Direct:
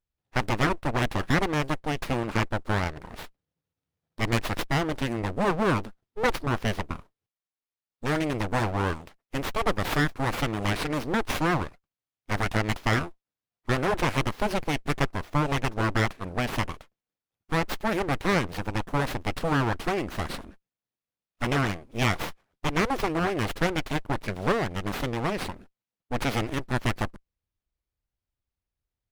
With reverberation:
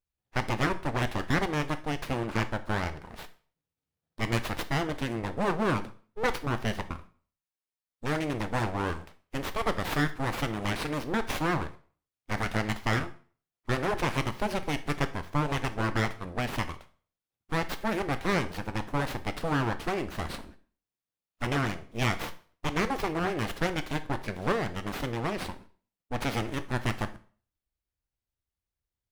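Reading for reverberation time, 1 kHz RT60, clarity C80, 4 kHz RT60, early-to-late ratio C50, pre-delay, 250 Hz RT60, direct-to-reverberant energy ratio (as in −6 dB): 0.45 s, 0.45 s, 20.0 dB, 0.40 s, 15.0 dB, 6 ms, 0.40 s, 10.5 dB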